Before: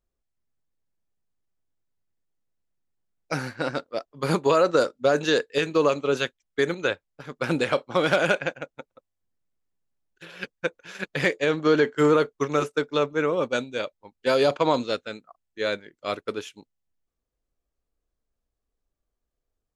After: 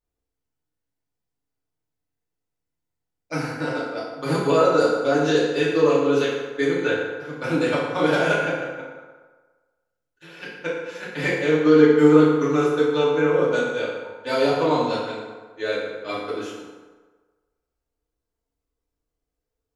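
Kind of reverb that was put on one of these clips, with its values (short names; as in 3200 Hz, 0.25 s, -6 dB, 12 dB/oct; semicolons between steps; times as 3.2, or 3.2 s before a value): FDN reverb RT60 1.4 s, low-frequency decay 0.8×, high-frequency decay 0.6×, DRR -8.5 dB; gain -7.5 dB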